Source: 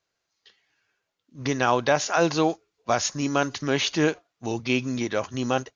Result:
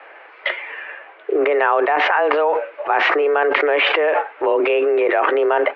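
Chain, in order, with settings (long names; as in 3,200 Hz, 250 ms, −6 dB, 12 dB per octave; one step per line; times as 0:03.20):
single-sideband voice off tune +150 Hz 210–2,300 Hz
envelope flattener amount 100%
level +1.5 dB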